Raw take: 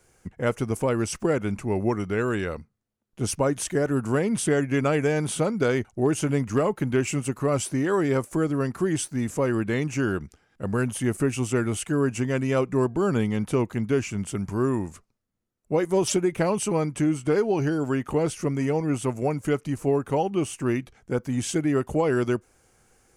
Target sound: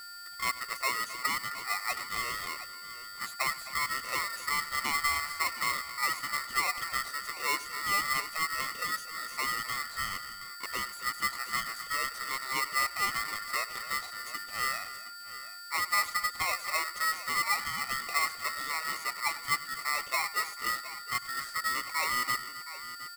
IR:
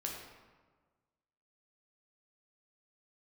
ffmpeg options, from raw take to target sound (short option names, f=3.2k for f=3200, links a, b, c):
-filter_complex "[0:a]afftfilt=real='re*pow(10,9/40*sin(2*PI*(1.1*log(max(b,1)*sr/1024/100)/log(2)-(0.62)*(pts-256)/sr)))':imag='im*pow(10,9/40*sin(2*PI*(1.1*log(max(b,1)*sr/1024/100)/log(2)-(0.62)*(pts-256)/sr)))':win_size=1024:overlap=0.75,acrossover=split=1200[a][b];[b]acompressor=threshold=-41dB:ratio=6[c];[a][c]amix=inputs=2:normalize=0,highpass=340,asplit=2[d][e];[e]aecho=0:1:99|261|717:0.133|0.188|0.2[f];[d][f]amix=inputs=2:normalize=0,aeval=exprs='val(0)+0.0158*sin(2*PI*3000*n/s)':c=same,aeval=exprs='val(0)*sgn(sin(2*PI*1600*n/s))':c=same,volume=-6.5dB"